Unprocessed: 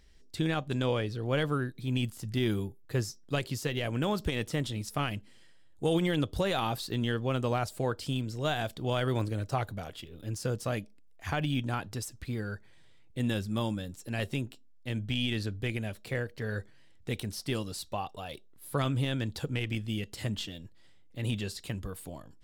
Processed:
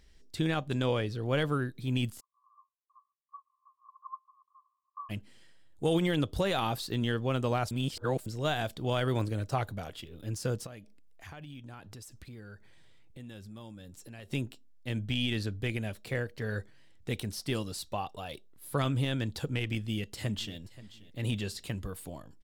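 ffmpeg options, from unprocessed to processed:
ffmpeg -i in.wav -filter_complex "[0:a]asplit=3[link_01][link_02][link_03];[link_01]afade=type=out:start_time=2.19:duration=0.02[link_04];[link_02]asuperpass=centerf=1100:order=8:qfactor=7.5,afade=type=in:start_time=2.19:duration=0.02,afade=type=out:start_time=5.09:duration=0.02[link_05];[link_03]afade=type=in:start_time=5.09:duration=0.02[link_06];[link_04][link_05][link_06]amix=inputs=3:normalize=0,asplit=3[link_07][link_08][link_09];[link_07]afade=type=out:start_time=10.65:duration=0.02[link_10];[link_08]acompressor=threshold=-46dB:ratio=4:attack=3.2:release=140:knee=1:detection=peak,afade=type=in:start_time=10.65:duration=0.02,afade=type=out:start_time=14.3:duration=0.02[link_11];[link_09]afade=type=in:start_time=14.3:duration=0.02[link_12];[link_10][link_11][link_12]amix=inputs=3:normalize=0,asplit=2[link_13][link_14];[link_14]afade=type=in:start_time=19.76:duration=0.01,afade=type=out:start_time=20.57:duration=0.01,aecho=0:1:530|1060|1590:0.133352|0.0400056|0.0120017[link_15];[link_13][link_15]amix=inputs=2:normalize=0,asplit=3[link_16][link_17][link_18];[link_16]atrim=end=7.712[link_19];[link_17]atrim=start=7.708:end=8.262,asetpts=PTS-STARTPTS,areverse[link_20];[link_18]atrim=start=8.258[link_21];[link_19][link_20]acrossfade=duration=0.004:curve1=hsin:curve2=hsin[link_22];[link_22][link_21]acrossfade=duration=0.004:curve1=hsin:curve2=hsin" out.wav

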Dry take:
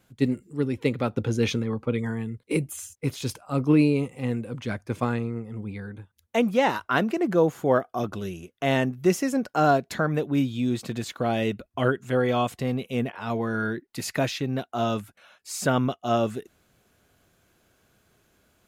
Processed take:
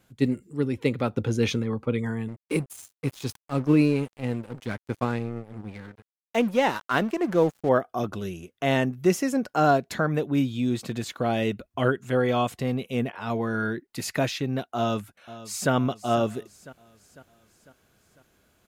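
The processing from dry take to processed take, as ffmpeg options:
ffmpeg -i in.wav -filter_complex "[0:a]asettb=1/sr,asplit=3[link_01][link_02][link_03];[link_01]atrim=end=2.284[link_04];[link_02]atrim=start=2.28:end=7.69,asetpts=PTS-STARTPTS,afade=type=in:duration=0.004:curve=qsin,afade=type=out:start_time=5.406:duration=0.004:curve=qsin,aeval=exprs='sgn(val(0))*max(abs(val(0))-0.0106,0)':channel_layout=same[link_05];[link_03]atrim=start=7.686[link_06];[link_04][link_05]acrossfade=duration=0.004:curve1=hsin:curve2=qsin[link_07];[link_07][link_06]acrossfade=duration=0.004:curve1=qsin:curve2=hsin,asplit=2[link_08][link_09];[link_09]afade=type=in:start_time=14.77:duration=0.01,afade=type=out:start_time=15.72:duration=0.01,aecho=0:1:500|1000|1500|2000|2500:0.158489|0.0871691|0.047943|0.0263687|0.0145028[link_10];[link_08][link_10]amix=inputs=2:normalize=0" out.wav

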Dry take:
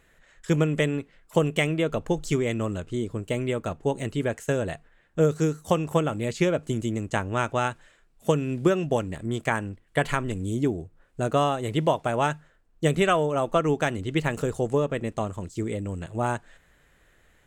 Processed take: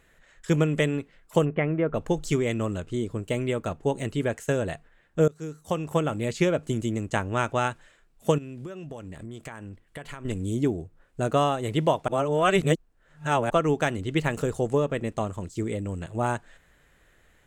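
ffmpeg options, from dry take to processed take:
ffmpeg -i in.wav -filter_complex "[0:a]asplit=3[link_01][link_02][link_03];[link_01]afade=type=out:start_time=1.44:duration=0.02[link_04];[link_02]lowpass=frequency=1900:width=0.5412,lowpass=frequency=1900:width=1.3066,afade=type=in:start_time=1.44:duration=0.02,afade=type=out:start_time=1.94:duration=0.02[link_05];[link_03]afade=type=in:start_time=1.94:duration=0.02[link_06];[link_04][link_05][link_06]amix=inputs=3:normalize=0,asettb=1/sr,asplit=3[link_07][link_08][link_09];[link_07]atrim=end=8.384[link_10];[link_08]atrim=start=8.38:end=10.25,asetpts=PTS-STARTPTS,afade=type=in:duration=0.004:curve=qsin,afade=type=out:start_time=1.866:duration=0.004:curve=qsin,acompressor=threshold=-36dB:ratio=6:attack=3.2:release=140:knee=1:detection=peak[link_11];[link_09]atrim=start=10.246[link_12];[link_10][link_11]acrossfade=duration=0.004:curve1=hsin:curve2=qsin[link_13];[link_13][link_12]acrossfade=duration=0.004:curve1=qsin:curve2=hsin,asplit=4[link_14][link_15][link_16][link_17];[link_14]atrim=end=5.28,asetpts=PTS-STARTPTS,afade=type=out:start_time=5.276:duration=0.004:curve=hsin:silence=0.0707946[link_18];[link_15]atrim=start=5.28:end=12.082,asetpts=PTS-STARTPTS,afade=type=in:duration=0.84:silence=0.0707946[link_19];[link_16]atrim=start=12.078:end=13.502,asetpts=PTS-STARTPTS,areverse[link_20];[link_17]atrim=start=13.498[link_21];[link_18][link_19]concat=n=2:v=0:a=1[link_22];[link_22][link_20]acrossfade=duration=0.004:curve1=hsin:curve2=hsin[link_23];[link_23][link_21]acrossfade=duration=0.004:curve1=hsin:curve2=hsin" out.wav

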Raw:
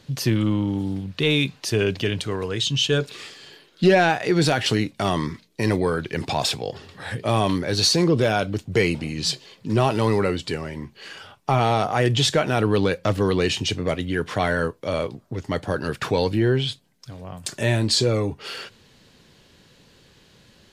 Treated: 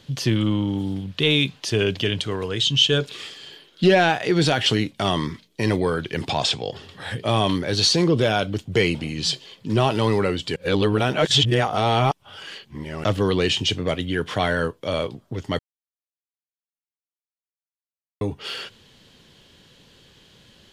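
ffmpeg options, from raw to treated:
ffmpeg -i in.wav -filter_complex "[0:a]asettb=1/sr,asplit=3[link_01][link_02][link_03];[link_01]atrim=end=6.314[link_04];[link_02]atrim=start=6.31:end=6.72,asetpts=PTS-STARTPTS,afade=type=in:duration=0.004:curve=qsin,afade=type=out:start_time=0.406:duration=0.004:curve=qsin,lowpass=frequency=8600:width=0.5412,lowpass=frequency=8600:width=1.3066[link_05];[link_03]atrim=start=6.716[link_06];[link_04][link_05]acrossfade=duration=0.004:curve1=hsin:curve2=qsin[link_07];[link_07][link_06]acrossfade=duration=0.004:curve1=qsin:curve2=hsin,asplit=5[link_08][link_09][link_10][link_11][link_12];[link_08]atrim=end=10.562[link_13];[link_09]atrim=start=10.558:end=13.042,asetpts=PTS-STARTPTS,areverse[link_14];[link_10]atrim=start=13.038:end=15.59,asetpts=PTS-STARTPTS,afade=type=out:start_time=2.548:duration=0.004:curve=hsin[link_15];[link_11]atrim=start=15.59:end=18.21,asetpts=PTS-STARTPTS,volume=0[link_16];[link_12]atrim=start=18.21,asetpts=PTS-STARTPTS,afade=type=in:duration=0.004:curve=hsin[link_17];[link_13][link_14]acrossfade=duration=0.004:curve1=hsin:curve2=hsin[link_18];[link_15][link_16][link_17]concat=n=3:v=0:a=1[link_19];[link_18][link_19]acrossfade=duration=0.004:curve1=hsin:curve2=hsin,acrossover=split=9400[link_20][link_21];[link_21]acompressor=threshold=-53dB:ratio=4:attack=1:release=60[link_22];[link_20][link_22]amix=inputs=2:normalize=0,equalizer=frequency=3200:width=4.9:gain=7.5" out.wav

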